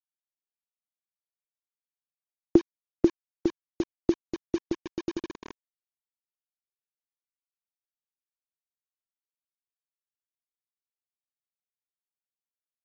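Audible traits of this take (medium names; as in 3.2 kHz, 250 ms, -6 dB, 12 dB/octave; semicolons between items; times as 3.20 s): tremolo triangle 2 Hz, depth 80%; a quantiser's noise floor 6-bit, dither none; AC-3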